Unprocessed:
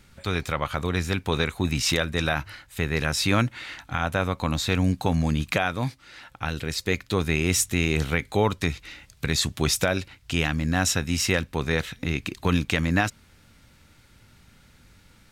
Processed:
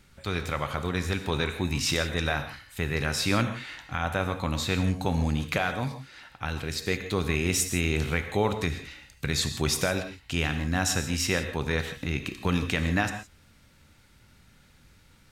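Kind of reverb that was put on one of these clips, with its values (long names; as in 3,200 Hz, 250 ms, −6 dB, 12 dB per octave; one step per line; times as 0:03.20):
reverb whose tail is shaped and stops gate 190 ms flat, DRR 7 dB
level −3.5 dB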